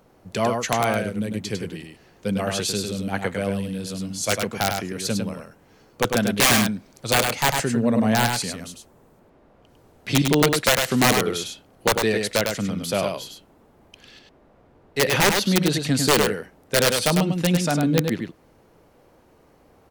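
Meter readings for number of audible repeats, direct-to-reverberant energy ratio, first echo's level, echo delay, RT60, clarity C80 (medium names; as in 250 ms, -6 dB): 1, no reverb, -5.0 dB, 101 ms, no reverb, no reverb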